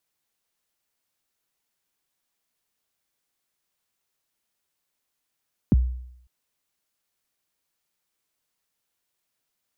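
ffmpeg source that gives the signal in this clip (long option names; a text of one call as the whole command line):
ffmpeg -f lavfi -i "aevalsrc='0.266*pow(10,-3*t/0.73)*sin(2*PI*(310*0.026/log(62/310)*(exp(log(62/310)*min(t,0.026)/0.026)-1)+62*max(t-0.026,0)))':duration=0.55:sample_rate=44100" out.wav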